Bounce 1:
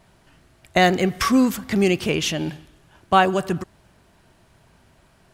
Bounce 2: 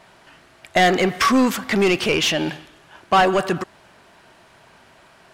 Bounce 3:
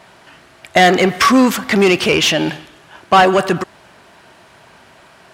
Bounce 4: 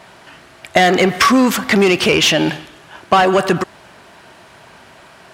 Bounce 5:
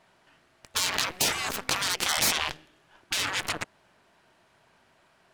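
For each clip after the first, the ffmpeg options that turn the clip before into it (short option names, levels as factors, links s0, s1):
-filter_complex "[0:a]asplit=2[s0][s1];[s1]highpass=f=720:p=1,volume=11.2,asoftclip=type=tanh:threshold=0.75[s2];[s0][s2]amix=inputs=2:normalize=0,lowpass=f=3500:p=1,volume=0.501,volume=0.631"
-af "highpass=46,volume=1.88"
-af "acompressor=threshold=0.282:ratio=6,volume=1.33"
-af "aeval=exprs='0.891*(cos(1*acos(clip(val(0)/0.891,-1,1)))-cos(1*PI/2))+0.1*(cos(3*acos(clip(val(0)/0.891,-1,1)))-cos(3*PI/2))+0.112*(cos(4*acos(clip(val(0)/0.891,-1,1)))-cos(4*PI/2))+0.1*(cos(7*acos(clip(val(0)/0.891,-1,1)))-cos(7*PI/2))':c=same,afftfilt=real='re*lt(hypot(re,im),0.224)':imag='im*lt(hypot(re,im),0.224)':win_size=1024:overlap=0.75,volume=0.794"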